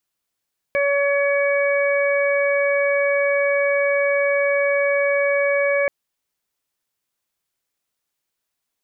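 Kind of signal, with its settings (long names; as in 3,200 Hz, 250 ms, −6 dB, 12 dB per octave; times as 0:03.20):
steady harmonic partials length 5.13 s, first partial 565 Hz, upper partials −13.5/−8/−5.5 dB, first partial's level −17.5 dB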